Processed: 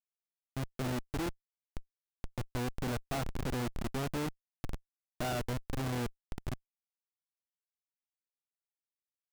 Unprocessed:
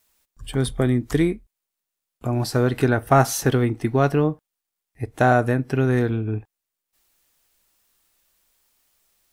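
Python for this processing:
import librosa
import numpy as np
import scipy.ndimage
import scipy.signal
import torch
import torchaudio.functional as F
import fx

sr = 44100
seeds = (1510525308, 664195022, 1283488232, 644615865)

y = fx.level_steps(x, sr, step_db=21)
y = fx.echo_diffused(y, sr, ms=617, feedback_pct=48, wet_db=-15.5)
y = fx.schmitt(y, sr, flips_db=-29.0)
y = y * librosa.db_to_amplitude(-6.0)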